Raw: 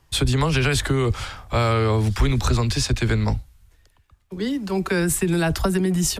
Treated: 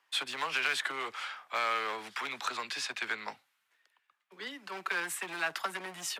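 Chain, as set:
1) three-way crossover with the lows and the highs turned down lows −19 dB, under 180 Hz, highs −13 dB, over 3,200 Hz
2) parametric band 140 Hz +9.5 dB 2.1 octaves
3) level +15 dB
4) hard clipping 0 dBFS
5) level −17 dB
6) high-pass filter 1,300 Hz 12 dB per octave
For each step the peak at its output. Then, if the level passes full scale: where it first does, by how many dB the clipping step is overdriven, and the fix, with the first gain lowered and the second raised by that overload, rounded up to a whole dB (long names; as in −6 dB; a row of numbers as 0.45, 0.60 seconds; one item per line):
−11.0, −6.5, +8.5, 0.0, −17.0, −16.5 dBFS
step 3, 8.5 dB
step 3 +6 dB, step 5 −8 dB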